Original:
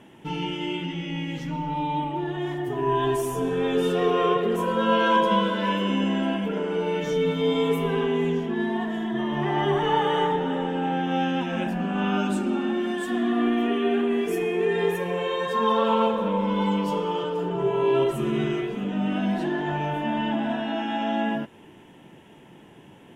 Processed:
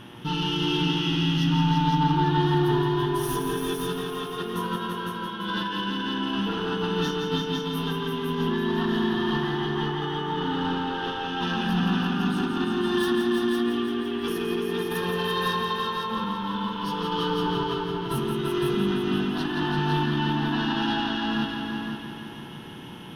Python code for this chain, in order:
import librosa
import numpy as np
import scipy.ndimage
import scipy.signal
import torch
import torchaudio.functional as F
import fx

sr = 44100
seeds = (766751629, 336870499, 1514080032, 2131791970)

y = scipy.signal.sosfilt(scipy.signal.butter(2, 11000.0, 'lowpass', fs=sr, output='sos'), x)
y = fx.high_shelf(y, sr, hz=3700.0, db=11.0)
y = fx.over_compress(y, sr, threshold_db=-27.0, ratio=-0.5)
y = 10.0 ** (-23.0 / 20.0) * np.tanh(y / 10.0 ** (-23.0 / 20.0))
y = fx.fixed_phaser(y, sr, hz=2200.0, stages=6)
y = fx.dmg_buzz(y, sr, base_hz=120.0, harmonics=28, level_db=-54.0, tilt_db=-4, odd_only=False)
y = fx.echo_heads(y, sr, ms=169, heads='all three', feedback_pct=44, wet_db=-7.0)
y = y * librosa.db_to_amplitude(4.0)